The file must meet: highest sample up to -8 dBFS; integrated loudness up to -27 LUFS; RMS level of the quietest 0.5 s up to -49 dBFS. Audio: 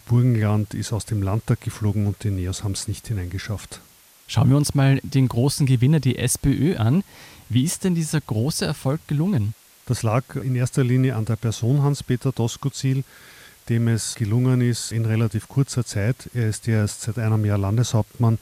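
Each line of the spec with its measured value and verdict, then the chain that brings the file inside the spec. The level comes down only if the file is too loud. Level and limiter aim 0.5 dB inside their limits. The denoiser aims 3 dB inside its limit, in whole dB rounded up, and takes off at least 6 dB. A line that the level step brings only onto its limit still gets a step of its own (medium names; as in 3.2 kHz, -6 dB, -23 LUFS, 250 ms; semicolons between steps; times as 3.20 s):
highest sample -6.0 dBFS: fail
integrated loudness -22.0 LUFS: fail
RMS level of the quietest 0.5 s -51 dBFS: pass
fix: trim -5.5 dB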